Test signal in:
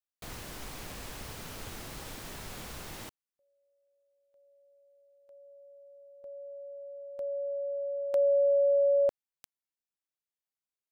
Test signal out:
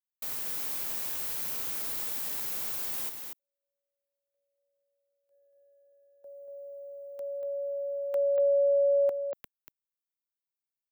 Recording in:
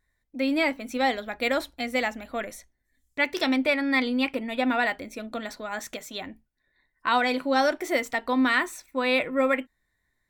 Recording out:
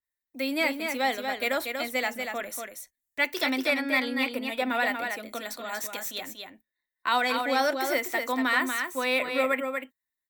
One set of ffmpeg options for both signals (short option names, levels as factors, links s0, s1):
-filter_complex "[0:a]aemphasis=mode=production:type=bsi,agate=range=0.141:threshold=0.00178:ratio=16:release=93:detection=peak,acrossover=split=270|590|3000[s0][s1][s2][s3];[s3]asoftclip=type=tanh:threshold=0.0596[s4];[s0][s1][s2][s4]amix=inputs=4:normalize=0,aecho=1:1:238:0.531,adynamicequalizer=threshold=0.0141:dfrequency=3200:dqfactor=0.7:tfrequency=3200:tqfactor=0.7:attack=5:release=100:ratio=0.375:range=2:mode=cutabove:tftype=highshelf,volume=0.794"